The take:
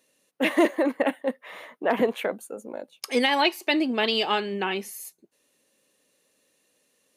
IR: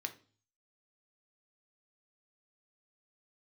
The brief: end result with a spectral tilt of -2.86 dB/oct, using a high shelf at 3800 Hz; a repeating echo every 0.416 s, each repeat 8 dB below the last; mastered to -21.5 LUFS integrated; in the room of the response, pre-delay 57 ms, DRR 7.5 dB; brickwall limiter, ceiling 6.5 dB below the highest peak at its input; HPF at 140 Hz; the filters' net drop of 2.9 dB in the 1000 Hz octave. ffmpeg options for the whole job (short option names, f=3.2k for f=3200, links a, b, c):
-filter_complex "[0:a]highpass=140,equalizer=f=1k:t=o:g=-4,highshelf=f=3.8k:g=3.5,alimiter=limit=-15dB:level=0:latency=1,aecho=1:1:416|832|1248|1664|2080:0.398|0.159|0.0637|0.0255|0.0102,asplit=2[a][b];[1:a]atrim=start_sample=2205,adelay=57[c];[b][c]afir=irnorm=-1:irlink=0,volume=-7.5dB[d];[a][d]amix=inputs=2:normalize=0,volume=5.5dB"